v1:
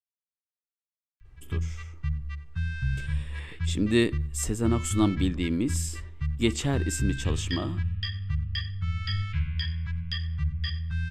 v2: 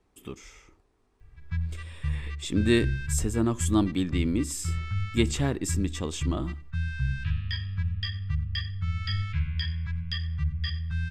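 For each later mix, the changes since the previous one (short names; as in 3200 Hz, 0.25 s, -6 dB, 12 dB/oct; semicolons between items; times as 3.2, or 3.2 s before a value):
speech: entry -1.25 s; master: add notch 3000 Hz, Q 23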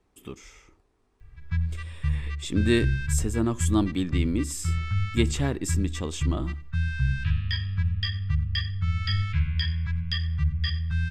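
background +3.5 dB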